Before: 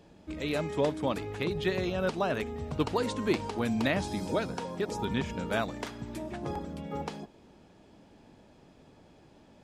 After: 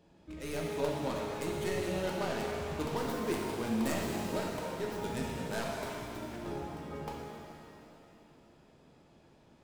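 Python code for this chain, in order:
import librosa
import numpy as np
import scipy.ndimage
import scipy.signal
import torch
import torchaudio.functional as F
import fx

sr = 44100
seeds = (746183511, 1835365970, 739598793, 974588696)

y = fx.tracing_dist(x, sr, depth_ms=0.31)
y = fx.rev_shimmer(y, sr, seeds[0], rt60_s=2.5, semitones=7, shimmer_db=-8, drr_db=-2.0)
y = F.gain(torch.from_numpy(y), -8.5).numpy()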